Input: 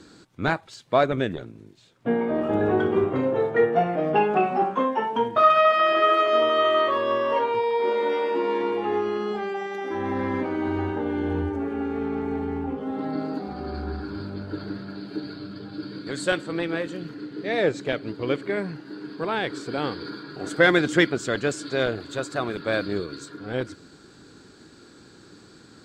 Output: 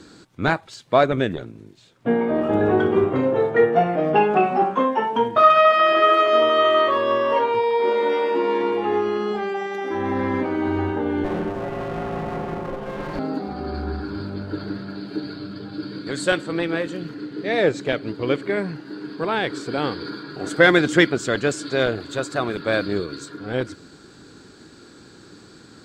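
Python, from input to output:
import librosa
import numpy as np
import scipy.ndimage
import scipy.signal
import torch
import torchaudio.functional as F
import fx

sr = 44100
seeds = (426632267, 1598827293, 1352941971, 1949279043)

y = fx.lower_of_two(x, sr, delay_ms=5.6, at=(11.24, 13.19))
y = y * librosa.db_to_amplitude(3.5)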